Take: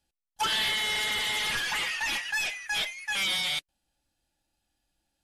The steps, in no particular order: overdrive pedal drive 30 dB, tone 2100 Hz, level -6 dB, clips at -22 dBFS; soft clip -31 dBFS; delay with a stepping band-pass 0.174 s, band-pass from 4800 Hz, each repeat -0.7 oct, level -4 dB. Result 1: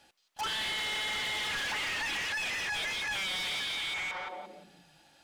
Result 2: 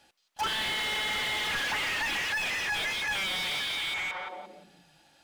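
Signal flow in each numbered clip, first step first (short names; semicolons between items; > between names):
delay with a stepping band-pass > overdrive pedal > soft clip; delay with a stepping band-pass > soft clip > overdrive pedal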